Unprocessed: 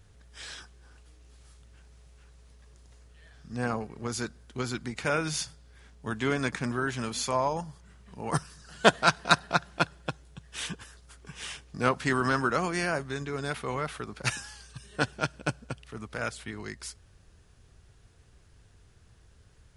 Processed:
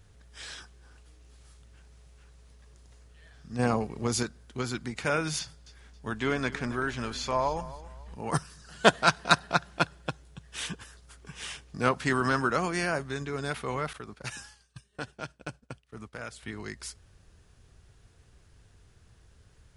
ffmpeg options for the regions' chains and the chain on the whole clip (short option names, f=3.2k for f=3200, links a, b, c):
-filter_complex "[0:a]asettb=1/sr,asplit=3[a][b][c];[a]atrim=end=3.594[d];[b]atrim=start=3.59:end=4.23,asetpts=PTS-STARTPTS,afade=t=in:d=0.004:c=qsin,afade=t=out:st=0.636:d=0.004:c=qsin,equalizer=f=1.5k:t=o:w=0.56:g=-6,acontrast=28[e];[c]atrim=start=4.226[f];[d][e]acrossfade=d=0.004:c1=hsin:c2=qsin[g];[g][f]acrossfade=d=0.004:c1=qsin:c2=hsin,asettb=1/sr,asplit=3[h][i][j];[h]atrim=end=5.394[k];[i]atrim=start=5.39:end=8.16,asetpts=PTS-STARTPTS,afade=t=in:d=0.004:c=qsin,afade=t=out:st=2.766:d=0.004:c=qsin,acrossover=split=6100[l][m];[m]acompressor=threshold=-56dB:ratio=4:attack=1:release=60[n];[l][n]amix=inputs=2:normalize=0,asubboost=boost=10:cutoff=58,aecho=1:1:273|546|819:0.141|0.0424|0.0127,atrim=end_sample=122157[o];[j]atrim=start=8.156[p];[k][o]acrossfade=d=0.004:c1=hsin:c2=qsin[q];[q][p]acrossfade=d=0.004:c1=qsin:c2=hsin,asettb=1/sr,asplit=3[r][s][t];[r]atrim=end=13.934[u];[s]atrim=start=13.93:end=16.43,asetpts=PTS-STARTPTS,afade=t=in:d=0.004:c=qsin,afade=t=out:st=2.496:d=0.004:c=qsin,agate=range=-33dB:threshold=-40dB:ratio=3:release=100:detection=peak,acompressor=threshold=-39dB:ratio=2:attack=3.2:release=140:knee=1:detection=peak[v];[t]atrim=start=16.426[w];[u][v]acrossfade=d=0.004:c1=hsin:c2=qsin[x];[x][w]acrossfade=d=0.004:c1=qsin:c2=hsin"